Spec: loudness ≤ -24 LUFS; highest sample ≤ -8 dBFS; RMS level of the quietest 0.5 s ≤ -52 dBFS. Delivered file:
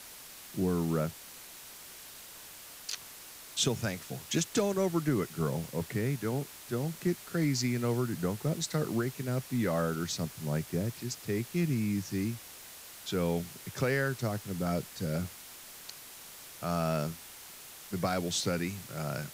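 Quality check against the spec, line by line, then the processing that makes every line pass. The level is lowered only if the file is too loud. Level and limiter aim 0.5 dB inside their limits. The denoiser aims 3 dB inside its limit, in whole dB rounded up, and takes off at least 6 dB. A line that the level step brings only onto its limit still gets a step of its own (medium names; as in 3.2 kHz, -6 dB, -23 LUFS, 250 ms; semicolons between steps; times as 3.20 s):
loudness -33.0 LUFS: pass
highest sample -17.0 dBFS: pass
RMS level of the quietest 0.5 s -49 dBFS: fail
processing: noise reduction 6 dB, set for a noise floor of -49 dBFS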